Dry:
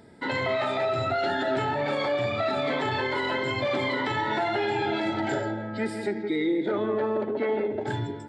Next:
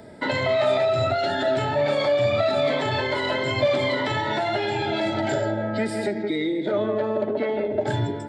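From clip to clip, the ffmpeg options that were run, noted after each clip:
ffmpeg -i in.wav -filter_complex "[0:a]acrossover=split=170|3000[link_01][link_02][link_03];[link_02]acompressor=threshold=-31dB:ratio=6[link_04];[link_01][link_04][link_03]amix=inputs=3:normalize=0,equalizer=frequency=610:width=7.3:gain=12.5,volume=6.5dB" out.wav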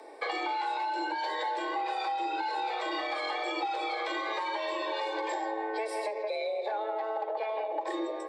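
ffmpeg -i in.wav -af "acompressor=threshold=-25dB:ratio=6,afreqshift=220,volume=-4.5dB" out.wav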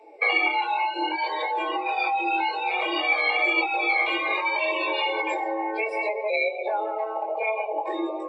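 ffmpeg -i in.wav -af "flanger=delay=18.5:depth=5.5:speed=0.62,afftdn=noise_reduction=17:noise_floor=-43,superequalizer=11b=0.562:12b=3.98:16b=0.355,volume=8.5dB" out.wav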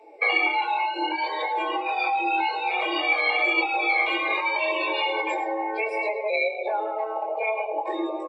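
ffmpeg -i in.wav -af "aecho=1:1:108:0.188" out.wav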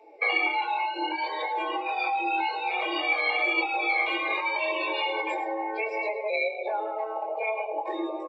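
ffmpeg -i in.wav -af "aresample=16000,aresample=44100,volume=-3dB" out.wav

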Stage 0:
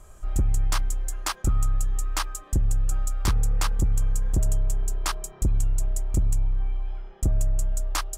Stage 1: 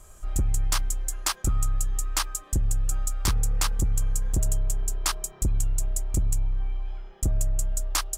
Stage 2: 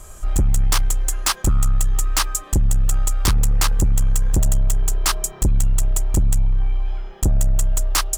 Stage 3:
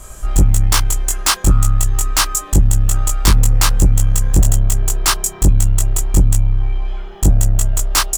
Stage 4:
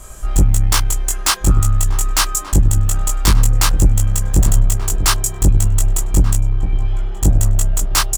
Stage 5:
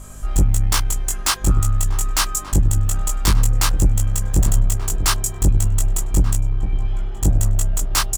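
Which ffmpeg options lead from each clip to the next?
ffmpeg -i in.wav -af "highshelf=frequency=3100:gain=7.5,volume=-2dB" out.wav
ffmpeg -i in.wav -af "aeval=exprs='0.237*sin(PI/2*2*val(0)/0.237)':channel_layout=same" out.wav
ffmpeg -i in.wav -filter_complex "[0:a]asplit=2[link_01][link_02];[link_02]adelay=20,volume=-2dB[link_03];[link_01][link_03]amix=inputs=2:normalize=0,volume=3.5dB" out.wav
ffmpeg -i in.wav -filter_complex "[0:a]asplit=2[link_01][link_02];[link_02]adelay=1183,lowpass=frequency=910:poles=1,volume=-10dB,asplit=2[link_03][link_04];[link_04]adelay=1183,lowpass=frequency=910:poles=1,volume=0.5,asplit=2[link_05][link_06];[link_06]adelay=1183,lowpass=frequency=910:poles=1,volume=0.5,asplit=2[link_07][link_08];[link_08]adelay=1183,lowpass=frequency=910:poles=1,volume=0.5,asplit=2[link_09][link_10];[link_10]adelay=1183,lowpass=frequency=910:poles=1,volume=0.5[link_11];[link_01][link_03][link_05][link_07][link_09][link_11]amix=inputs=6:normalize=0,volume=-1dB" out.wav
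ffmpeg -i in.wav -af "aeval=exprs='val(0)+0.0178*(sin(2*PI*50*n/s)+sin(2*PI*2*50*n/s)/2+sin(2*PI*3*50*n/s)/3+sin(2*PI*4*50*n/s)/4+sin(2*PI*5*50*n/s)/5)':channel_layout=same,volume=-3.5dB" out.wav

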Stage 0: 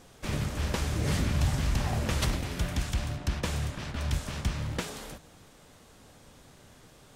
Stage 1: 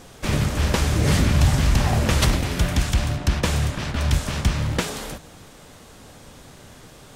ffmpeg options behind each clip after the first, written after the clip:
ffmpeg -i in.wav -af "acontrast=86,volume=2.5dB" out.wav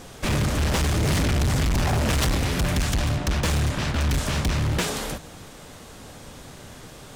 ffmpeg -i in.wav -af "asoftclip=type=hard:threshold=-22dB,volume=2.5dB" out.wav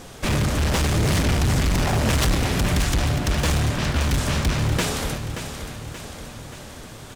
ffmpeg -i in.wav -af "aecho=1:1:579|1158|1737|2316|2895|3474:0.335|0.184|0.101|0.0557|0.0307|0.0169,volume=1.5dB" out.wav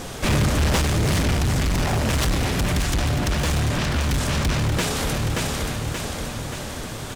ffmpeg -i in.wav -af "alimiter=limit=-23.5dB:level=0:latency=1:release=10,volume=7.5dB" out.wav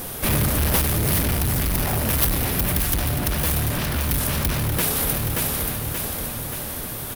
ffmpeg -i in.wav -af "aexciter=amount=7.5:drive=6.9:freq=10000,volume=-2dB" out.wav

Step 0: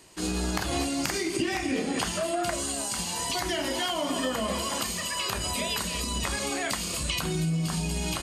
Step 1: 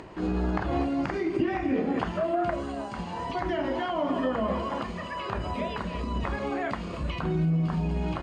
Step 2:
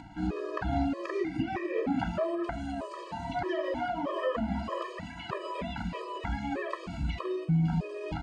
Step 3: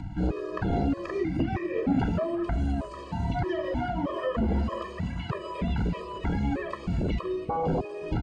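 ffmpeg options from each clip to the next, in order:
ffmpeg -i in.wav -af "lowpass=1400,acompressor=mode=upward:threshold=-37dB:ratio=2.5,volume=2.5dB" out.wav
ffmpeg -i in.wav -af "afftfilt=real='re*gt(sin(2*PI*1.6*pts/sr)*(1-2*mod(floor(b*sr/1024/330),2)),0)':imag='im*gt(sin(2*PI*1.6*pts/sr)*(1-2*mod(floor(b*sr/1024/330),2)),0)':win_size=1024:overlap=0.75" out.wav
ffmpeg -i in.wav -filter_complex "[0:a]acrossover=split=180|3500[link_01][link_02][link_03];[link_01]aeval=exprs='0.0668*sin(PI/2*4.47*val(0)/0.0668)':channel_layout=same[link_04];[link_04][link_02][link_03]amix=inputs=3:normalize=0,aecho=1:1:351:0.0794" out.wav

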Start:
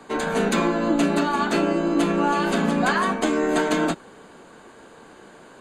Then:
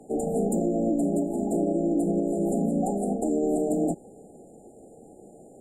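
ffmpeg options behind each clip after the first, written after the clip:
ffmpeg -i in.wav -af "afftfilt=real='re*(1-between(b*sr/4096,850,7000))':imag='im*(1-between(b*sr/4096,850,7000))':win_size=4096:overlap=0.75,equalizer=frequency=1700:width=0.98:gain=-8.5,alimiter=limit=-16.5dB:level=0:latency=1:release=67" out.wav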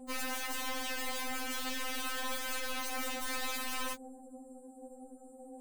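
ffmpeg -i in.wav -af "aeval=exprs='(mod(28.2*val(0)+1,2)-1)/28.2':channel_layout=same,aeval=exprs='0.0355*(cos(1*acos(clip(val(0)/0.0355,-1,1)))-cos(1*PI/2))+0.00562*(cos(4*acos(clip(val(0)/0.0355,-1,1)))-cos(4*PI/2))+0.00282*(cos(5*acos(clip(val(0)/0.0355,-1,1)))-cos(5*PI/2))+0.00251*(cos(6*acos(clip(val(0)/0.0355,-1,1)))-cos(6*PI/2))+0.000631*(cos(8*acos(clip(val(0)/0.0355,-1,1)))-cos(8*PI/2))':channel_layout=same,afftfilt=real='re*3.46*eq(mod(b,12),0)':imag='im*3.46*eq(mod(b,12),0)':win_size=2048:overlap=0.75,volume=-2dB" out.wav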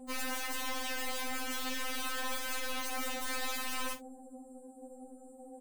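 ffmpeg -i in.wav -filter_complex "[0:a]asplit=2[link_01][link_02];[link_02]adelay=47,volume=-13dB[link_03];[link_01][link_03]amix=inputs=2:normalize=0" out.wav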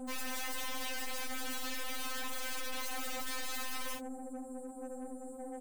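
ffmpeg -i in.wav -af "aeval=exprs='(tanh(200*val(0)+0.4)-tanh(0.4))/200':channel_layout=same,volume=8.5dB" out.wav

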